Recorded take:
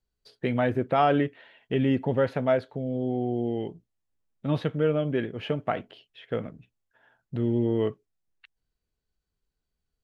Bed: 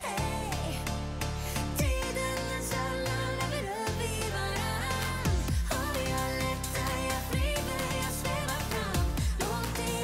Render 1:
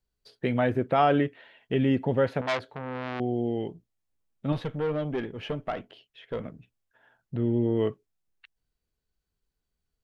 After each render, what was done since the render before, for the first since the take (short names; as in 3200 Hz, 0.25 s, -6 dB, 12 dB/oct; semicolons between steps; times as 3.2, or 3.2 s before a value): 2.41–3.2 core saturation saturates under 2700 Hz; 4.52–6.45 tube stage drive 22 dB, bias 0.45; 7.35–7.77 air absorption 200 m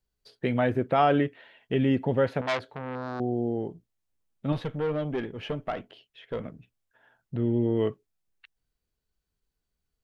2.95–3.71 band shelf 2500 Hz -15.5 dB 1 oct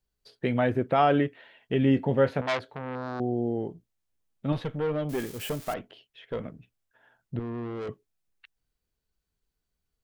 1.82–2.41 doubler 22 ms -10 dB; 5.09–5.74 switching spikes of -29.5 dBFS; 7.39–7.89 tube stage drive 32 dB, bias 0.4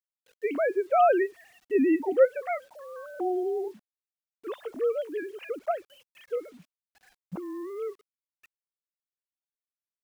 sine-wave speech; bit-crush 10-bit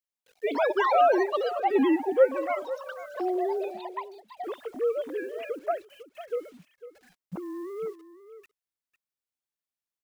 echo 0.501 s -14.5 dB; echoes that change speed 0.179 s, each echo +7 st, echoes 2, each echo -6 dB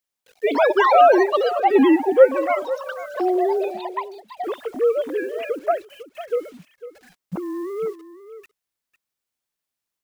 gain +8 dB